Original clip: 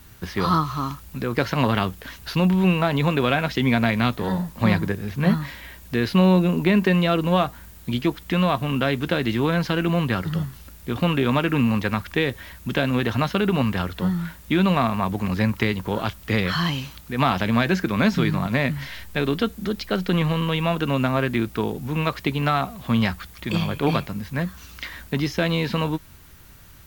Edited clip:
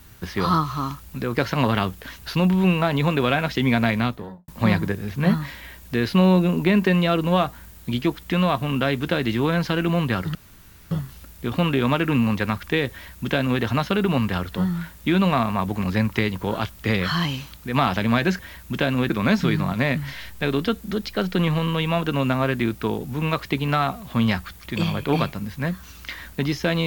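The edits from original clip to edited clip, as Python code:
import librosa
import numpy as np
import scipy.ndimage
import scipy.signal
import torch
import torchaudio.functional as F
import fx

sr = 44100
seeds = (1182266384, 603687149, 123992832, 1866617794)

y = fx.studio_fade_out(x, sr, start_s=3.9, length_s=0.58)
y = fx.edit(y, sr, fx.insert_room_tone(at_s=10.35, length_s=0.56),
    fx.duplicate(start_s=12.35, length_s=0.7, to_s=17.83), tone=tone)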